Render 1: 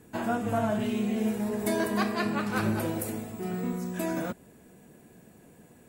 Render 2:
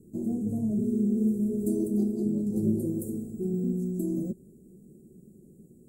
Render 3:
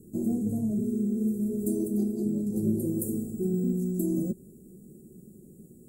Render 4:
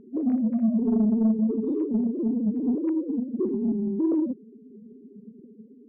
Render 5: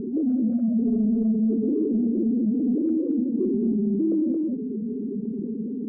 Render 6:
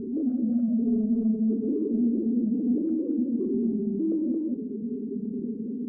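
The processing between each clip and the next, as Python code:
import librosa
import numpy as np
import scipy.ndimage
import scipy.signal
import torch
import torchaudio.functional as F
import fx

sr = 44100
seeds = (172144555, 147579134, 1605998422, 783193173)

y1 = scipy.signal.sosfilt(scipy.signal.ellip(3, 1.0, 70, [380.0, 7600.0], 'bandstop', fs=sr, output='sos'), x)
y1 = fx.high_shelf(y1, sr, hz=3200.0, db=-10.0)
y1 = y1 + 0.38 * np.pad(y1, (int(5.3 * sr / 1000.0), 0))[:len(y1)]
y1 = y1 * 10.0 ** (2.5 / 20.0)
y2 = fx.high_shelf(y1, sr, hz=8000.0, db=9.5)
y2 = fx.rider(y2, sr, range_db=3, speed_s=0.5)
y3 = fx.sine_speech(y2, sr)
y3 = 10.0 ** (-20.0 / 20.0) * np.tanh(y3 / 10.0 ** (-20.0 / 20.0))
y3 = y3 * 10.0 ** (5.0 / 20.0)
y4 = np.convolve(y3, np.full(46, 1.0 / 46))[:len(y3)]
y4 = y4 + 10.0 ** (-8.0 / 20.0) * np.pad(y4, (int(223 * sr / 1000.0), 0))[:len(y4)]
y4 = fx.env_flatten(y4, sr, amount_pct=70)
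y4 = y4 * 10.0 ** (-2.5 / 20.0)
y5 = fx.rev_fdn(y4, sr, rt60_s=1.1, lf_ratio=1.3, hf_ratio=0.85, size_ms=74.0, drr_db=8.0)
y5 = y5 * 10.0 ** (-4.0 / 20.0)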